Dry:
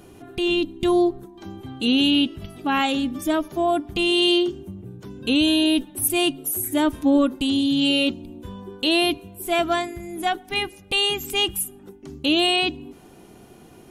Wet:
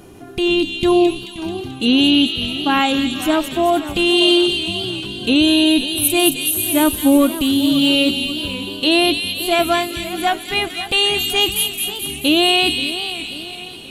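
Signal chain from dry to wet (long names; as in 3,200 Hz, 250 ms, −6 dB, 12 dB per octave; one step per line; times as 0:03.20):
0:06.67–0:07.87: running median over 3 samples
delay with a high-pass on its return 218 ms, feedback 62%, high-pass 2,700 Hz, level −3.5 dB
feedback echo with a swinging delay time 534 ms, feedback 48%, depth 154 cents, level −14 dB
level +5 dB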